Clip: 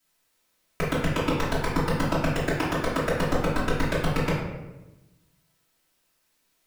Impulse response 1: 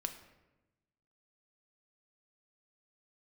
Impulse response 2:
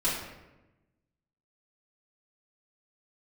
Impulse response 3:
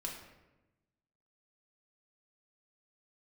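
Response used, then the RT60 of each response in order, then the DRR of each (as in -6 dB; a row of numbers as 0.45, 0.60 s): 2; 1.0, 1.0, 1.0 s; 5.5, -11.5, -2.5 dB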